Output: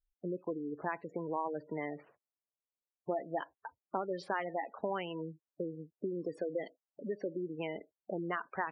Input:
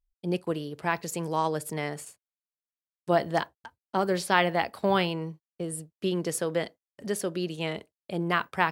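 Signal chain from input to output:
dynamic equaliser 290 Hz, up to +6 dB, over −52 dBFS, Q 6.7
low-pass that shuts in the quiet parts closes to 780 Hz, open at −20.5 dBFS
downward compressor 4 to 1, threshold −35 dBFS, peak gain reduction 16 dB
bass and treble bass −9 dB, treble −8 dB
gate on every frequency bin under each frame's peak −15 dB strong
level +2.5 dB

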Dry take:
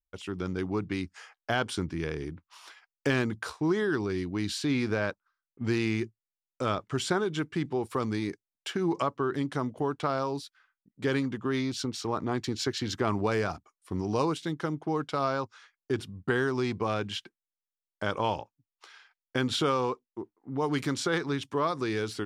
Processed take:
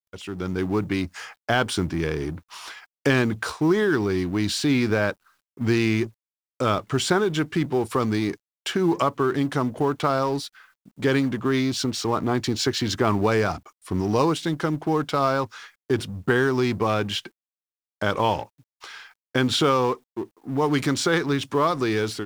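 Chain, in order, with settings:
mu-law and A-law mismatch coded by mu
automatic gain control gain up to 6 dB

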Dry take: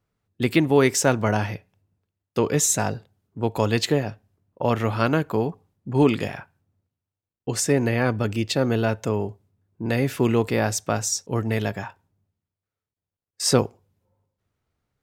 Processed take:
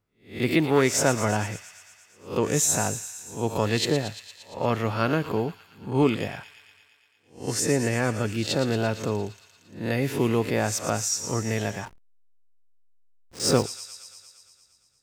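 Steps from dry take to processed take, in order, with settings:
peak hold with a rise ahead of every peak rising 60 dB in 0.35 s
delay with a high-pass on its return 115 ms, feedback 72%, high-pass 2,600 Hz, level −9 dB
0:11.85–0:13.64: slack as between gear wheels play −27 dBFS
level −3.5 dB

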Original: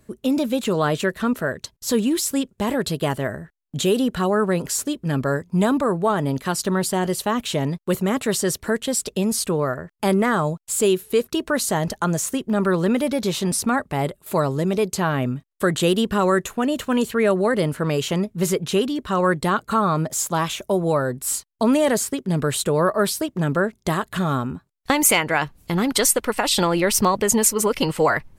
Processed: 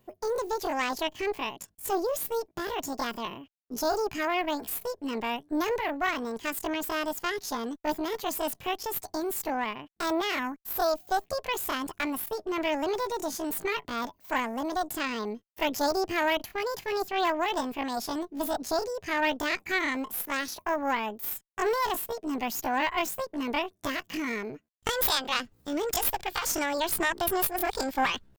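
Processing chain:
harmonic generator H 2 −9 dB, 3 −40 dB, 6 −23 dB, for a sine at −3.5 dBFS
pitch shifter +9 semitones
level −8.5 dB

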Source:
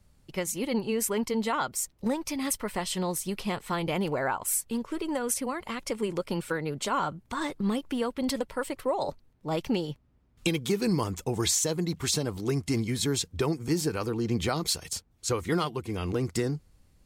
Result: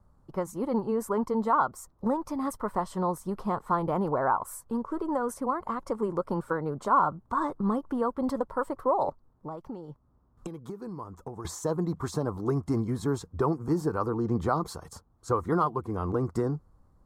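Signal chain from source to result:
high shelf with overshoot 1,700 Hz −14 dB, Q 3
0:09.09–0:11.45: downward compressor 6 to 1, threshold −37 dBFS, peak gain reduction 15.5 dB

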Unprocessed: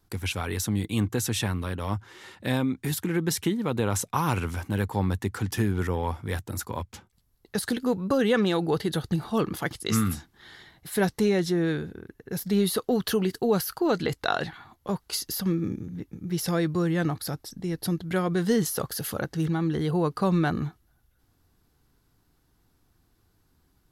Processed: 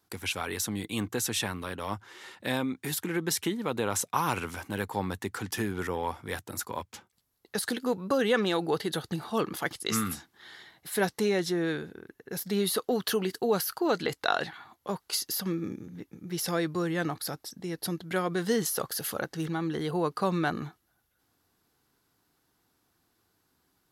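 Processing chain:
high-pass filter 380 Hz 6 dB per octave

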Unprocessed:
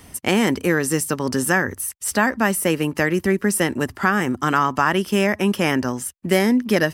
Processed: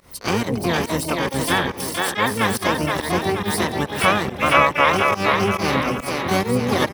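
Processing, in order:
parametric band 1,100 Hz +10.5 dB 0.49 octaves
on a send: echo with a time of its own for lows and highs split 310 Hz, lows 137 ms, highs 474 ms, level −3.5 dB
on the sum: fake sidechain pumping 140 BPM, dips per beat 1, −24 dB, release 120 ms
pitch-shifted copies added −12 semitones −4 dB, +12 semitones −3 dB
level −6 dB

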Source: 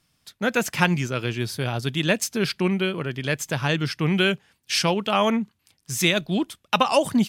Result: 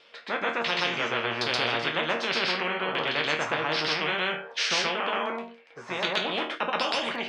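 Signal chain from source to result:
low-pass filter 7,600 Hz 12 dB per octave
auto-filter low-pass saw down 1.3 Hz 810–3,600 Hz
speech leveller 0.5 s
high-pass with resonance 500 Hz, resonance Q 4.9
resonators tuned to a chord D#2 minor, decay 0.25 s
on a send: backwards echo 126 ms −3.5 dB
on the sum: every bin compressed towards the loudest bin 4 to 1

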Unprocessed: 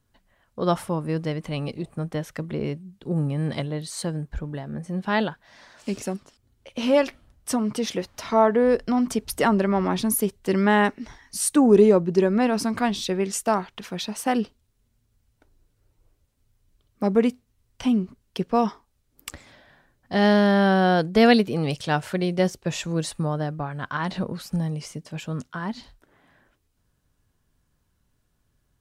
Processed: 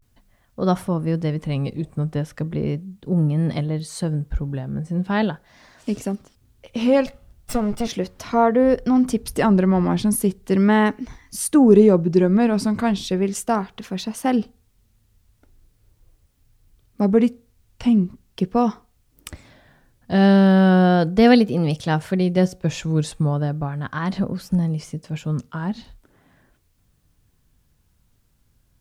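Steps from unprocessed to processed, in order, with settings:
0:07.07–0:07.85: lower of the sound and its delayed copy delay 1.4 ms
bit-depth reduction 12 bits, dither triangular
pitch vibrato 0.38 Hz 85 cents
low-shelf EQ 310 Hz +9 dB
on a send: convolution reverb RT60 0.40 s, pre-delay 3 ms, DRR 21 dB
on the sum: level −1 dB

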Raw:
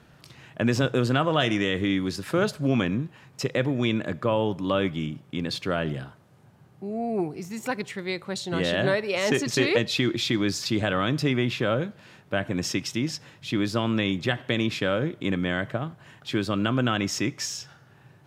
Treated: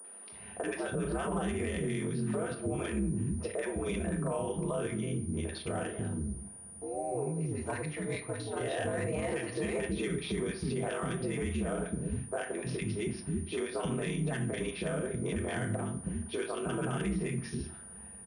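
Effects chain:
ring modulation 70 Hz
high-pass filter 68 Hz 24 dB per octave
three-band delay without the direct sound mids, highs, lows 40/320 ms, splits 310/1,300 Hz
in parallel at +2 dB: downward compressor, threshold −41 dBFS, peak gain reduction 18 dB
on the sum: notch comb filter 280 Hz
treble cut that deepens with the level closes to 2,700 Hz, closed at −23.5 dBFS
high-shelf EQ 2,500 Hz −9.5 dB
on a send at −7.5 dB: convolution reverb RT60 0.50 s, pre-delay 20 ms
on the sum: brickwall limiter −23 dBFS, peak gain reduction 8.5 dB
switching amplifier with a slow clock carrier 9,500 Hz
level −2 dB

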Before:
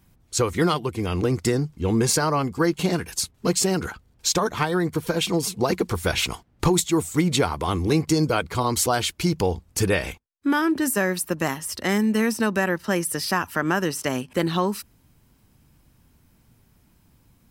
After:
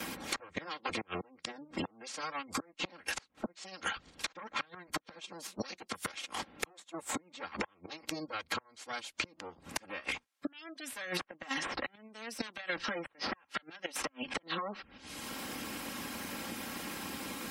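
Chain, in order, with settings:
lower of the sound and its delayed copy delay 3.7 ms
gate with flip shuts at −18 dBFS, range −36 dB
treble cut that deepens with the level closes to 1,700 Hz, closed at −31 dBFS
high-pass filter 420 Hz 6 dB per octave
noise gate −60 dBFS, range −9 dB
parametric band 2,700 Hz +4.5 dB 2.5 octaves
downward compressor 8 to 1, threshold −50 dBFS, peak gain reduction 25 dB
gate on every frequency bin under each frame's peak −25 dB strong
multiband upward and downward compressor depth 100%
level +16 dB

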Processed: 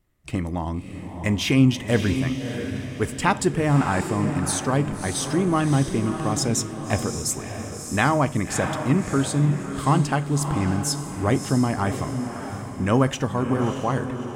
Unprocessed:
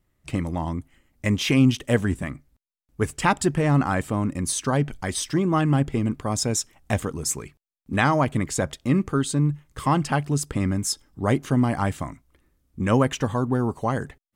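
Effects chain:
feedback delay with all-pass diffusion 626 ms, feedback 44%, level −7.5 dB
on a send at −15 dB: convolution reverb RT60 0.55 s, pre-delay 3 ms

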